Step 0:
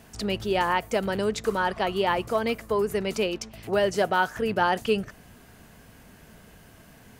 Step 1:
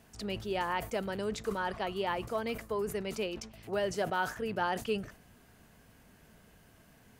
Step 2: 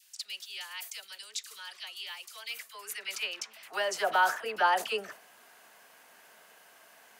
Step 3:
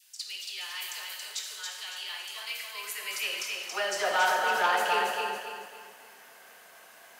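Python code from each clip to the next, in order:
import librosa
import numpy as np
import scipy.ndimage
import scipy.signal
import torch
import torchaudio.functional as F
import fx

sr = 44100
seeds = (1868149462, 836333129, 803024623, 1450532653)

y1 = fx.sustainer(x, sr, db_per_s=130.0)
y1 = y1 * 10.0 ** (-9.0 / 20.0)
y2 = fx.dispersion(y1, sr, late='lows', ms=47.0, hz=940.0)
y2 = fx.filter_sweep_highpass(y2, sr, from_hz=3800.0, to_hz=740.0, start_s=2.25, end_s=4.15, q=0.95)
y2 = y2 * 10.0 ** (7.0 / 20.0)
y3 = fx.echo_feedback(y2, sr, ms=278, feedback_pct=36, wet_db=-4.0)
y3 = fx.rev_gated(y3, sr, seeds[0], gate_ms=410, shape='falling', drr_db=0.5)
y3 = fx.transformer_sat(y3, sr, knee_hz=1600.0)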